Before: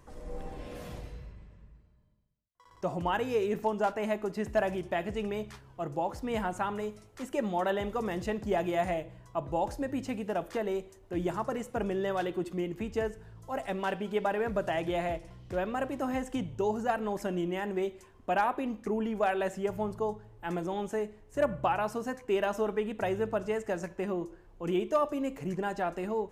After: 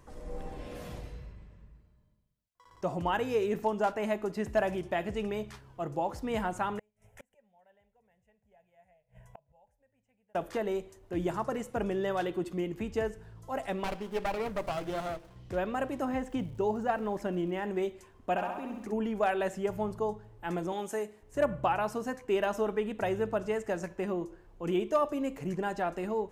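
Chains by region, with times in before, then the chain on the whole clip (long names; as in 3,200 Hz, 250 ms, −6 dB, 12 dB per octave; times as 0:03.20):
0:06.79–0:10.35: gate with flip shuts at −33 dBFS, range −33 dB + phaser with its sweep stopped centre 1,200 Hz, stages 6
0:13.84–0:15.36: spectral tilt +2 dB per octave + windowed peak hold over 17 samples
0:16.04–0:17.64: high-shelf EQ 4,400 Hz −10 dB + surface crackle 340 per second −53 dBFS
0:18.36–0:18.91: downward compressor 4 to 1, threshold −38 dBFS + surface crackle 560 per second −59 dBFS + flutter between parallel walls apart 11.3 metres, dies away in 0.88 s
0:20.72–0:21.23: high-pass filter 290 Hz 6 dB per octave + parametric band 11,000 Hz +9 dB 1.3 octaves
whole clip: no processing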